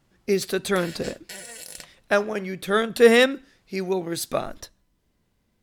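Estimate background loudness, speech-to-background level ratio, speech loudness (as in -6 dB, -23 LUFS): -39.5 LUFS, 16.5 dB, -23.0 LUFS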